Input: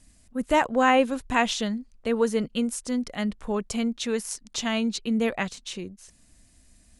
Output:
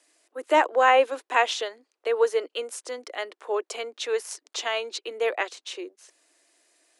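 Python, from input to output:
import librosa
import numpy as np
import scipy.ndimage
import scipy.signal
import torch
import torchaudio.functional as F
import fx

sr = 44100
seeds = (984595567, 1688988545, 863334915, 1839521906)

y = scipy.signal.sosfilt(scipy.signal.butter(12, 320.0, 'highpass', fs=sr, output='sos'), x)
y = fx.high_shelf(y, sr, hz=6000.0, db=-9.5)
y = y * librosa.db_to_amplitude(2.5)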